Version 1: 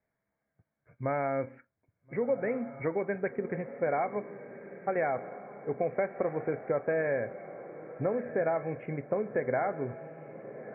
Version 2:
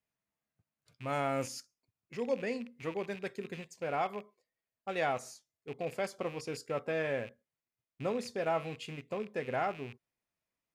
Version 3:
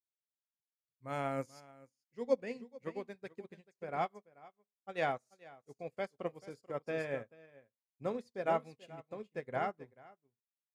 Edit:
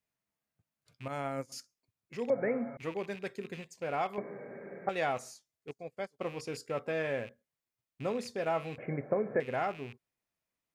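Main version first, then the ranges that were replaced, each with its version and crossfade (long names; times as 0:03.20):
2
0:01.08–0:01.52: punch in from 3
0:02.30–0:02.77: punch in from 1
0:04.18–0:04.89: punch in from 1
0:05.71–0:06.21: punch in from 3
0:08.78–0:09.40: punch in from 1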